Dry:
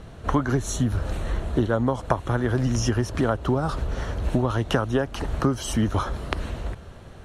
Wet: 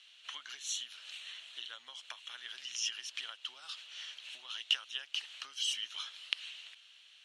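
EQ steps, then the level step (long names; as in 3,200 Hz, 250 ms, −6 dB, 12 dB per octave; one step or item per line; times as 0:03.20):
four-pole ladder band-pass 3,300 Hz, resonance 60%
high-shelf EQ 2,400 Hz +10 dB
+1.0 dB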